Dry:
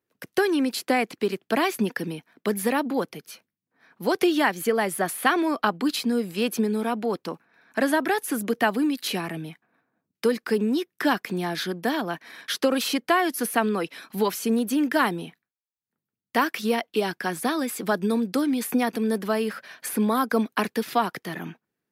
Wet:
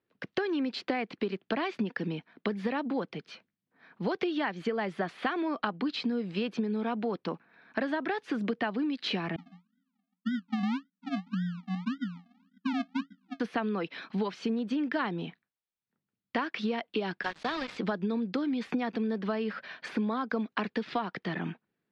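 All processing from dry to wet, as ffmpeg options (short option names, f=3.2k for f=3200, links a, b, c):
-filter_complex "[0:a]asettb=1/sr,asplit=3[a][b][c];[a]atrim=end=9.364[d];[b]atrim=start=9.36:end=13.4,asetpts=PTS-STARTPTS,afade=t=in:d=0.004:c=qsin,afade=t=out:st=4.036:d=0.004:c=qsin,asuperpass=centerf=220:order=20:qfactor=2.2,acrusher=samples=36:mix=1:aa=0.000001:lfo=1:lforange=21.6:lforate=1.8[e];[c]atrim=start=13.396[f];[d][e]acrossfade=d=0.004:c1=hsin:c2=qsin[g];[g][f]acrossfade=d=0.004:c1=qsin:c2=hsin,asettb=1/sr,asplit=3[h][i][j];[h]atrim=end=17.234[k];[i]atrim=start=17.23:end=17.78,asetpts=PTS-STARTPTS,afade=t=in:d=0.004:c=qsin,afade=t=out:st=0.546:d=0.004:c=qsin,highpass=f=760:p=1,acrusher=bits=4:mix=0:aa=0.5[l];[j]atrim=start=17.776[m];[k][l]acrossfade=d=0.004:c1=hsin:c2=qsin[n];[n][m]acrossfade=d=0.004:c1=qsin:c2=hsin,lowpass=f=4.2k:w=0.5412,lowpass=f=4.2k:w=1.3066,equalizer=f=190:w=2.8:g=3.5,acompressor=threshold=-28dB:ratio=6"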